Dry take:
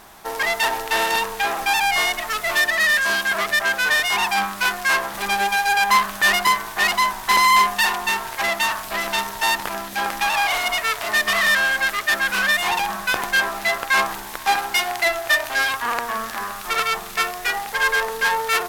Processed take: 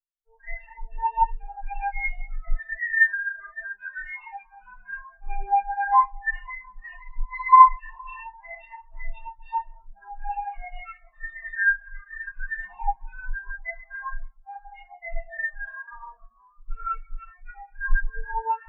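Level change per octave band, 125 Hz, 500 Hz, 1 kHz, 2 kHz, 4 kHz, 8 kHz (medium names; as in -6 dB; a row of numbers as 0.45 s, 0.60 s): no reading, under -20 dB, -3.0 dB, -10.0 dB, under -40 dB, under -40 dB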